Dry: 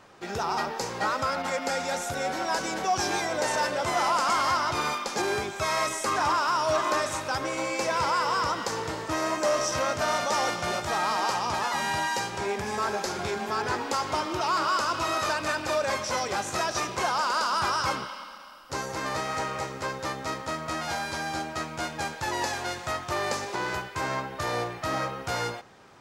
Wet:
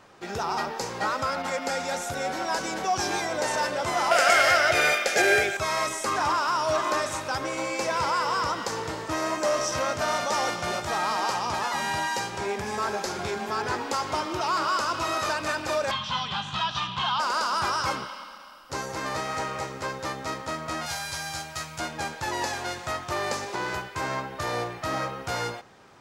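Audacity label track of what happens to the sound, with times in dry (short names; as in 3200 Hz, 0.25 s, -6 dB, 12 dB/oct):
4.110000	5.570000	EQ curve 130 Hz 0 dB, 250 Hz -5 dB, 400 Hz +5 dB, 680 Hz +13 dB, 1000 Hz -13 dB, 1500 Hz +12 dB, 2200 Hz +13 dB, 4200 Hz +4 dB, 13000 Hz +9 dB
15.910000	17.200000	EQ curve 110 Hz 0 dB, 160 Hz +9 dB, 360 Hz -17 dB, 570 Hz -16 dB, 970 Hz +3 dB, 2200 Hz -6 dB, 3200 Hz +14 dB, 5400 Hz -10 dB, 12000 Hz -25 dB
20.860000	21.800000	EQ curve 150 Hz 0 dB, 250 Hz -15 dB, 550 Hz -7 dB, 12000 Hz +8 dB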